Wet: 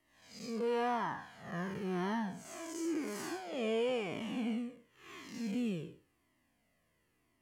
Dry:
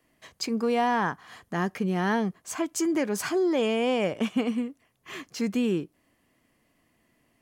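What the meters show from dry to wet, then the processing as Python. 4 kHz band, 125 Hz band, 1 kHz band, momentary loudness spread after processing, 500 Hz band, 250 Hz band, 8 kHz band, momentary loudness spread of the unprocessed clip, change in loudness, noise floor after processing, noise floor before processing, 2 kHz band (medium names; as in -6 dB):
-10.5 dB, -9.0 dB, -9.5 dB, 14 LU, -9.5 dB, -10.5 dB, -12.5 dB, 11 LU, -10.0 dB, -77 dBFS, -70 dBFS, -11.0 dB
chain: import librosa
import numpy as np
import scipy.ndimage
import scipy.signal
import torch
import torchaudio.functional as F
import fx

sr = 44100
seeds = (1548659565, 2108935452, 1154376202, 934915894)

y = fx.spec_blur(x, sr, span_ms=201.0)
y = fx.comb_cascade(y, sr, direction='falling', hz=0.95)
y = y * librosa.db_to_amplitude(-1.5)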